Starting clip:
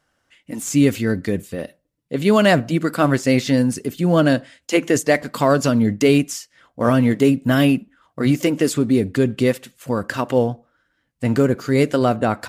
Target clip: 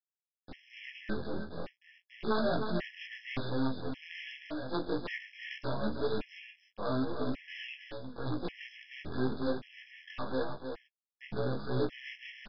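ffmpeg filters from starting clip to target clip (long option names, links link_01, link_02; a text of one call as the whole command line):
ffmpeg -i in.wav -filter_complex "[0:a]afftfilt=real='re':imag='-im':win_size=2048:overlap=0.75,agate=range=-18dB:threshold=-50dB:ratio=16:detection=peak,lowshelf=frequency=150:gain=-4,bandreject=frequency=50:width_type=h:width=6,bandreject=frequency=100:width_type=h:width=6,bandreject=frequency=150:width_type=h:width=6,bandreject=frequency=200:width_type=h:width=6,bandreject=frequency=250:width_type=h:width=6,acrossover=split=520|4100[link_01][link_02][link_03];[link_03]acompressor=threshold=-54dB:ratio=5[link_04];[link_01][link_02][link_04]amix=inputs=3:normalize=0,aeval=exprs='(mod(2.99*val(0)+1,2)-1)/2.99':channel_layout=same,acrusher=bits=4:dc=4:mix=0:aa=0.000001,asoftclip=type=tanh:threshold=-23dB,flanger=delay=8.9:depth=8.4:regen=-21:speed=0.3:shape=triangular,asplit=2[link_05][link_06];[link_06]aecho=0:1:309:0.447[link_07];[link_05][link_07]amix=inputs=2:normalize=0,aresample=11025,aresample=44100,afftfilt=real='re*gt(sin(2*PI*0.88*pts/sr)*(1-2*mod(floor(b*sr/1024/1700),2)),0)':imag='im*gt(sin(2*PI*0.88*pts/sr)*(1-2*mod(floor(b*sr/1024/1700),2)),0)':win_size=1024:overlap=0.75" out.wav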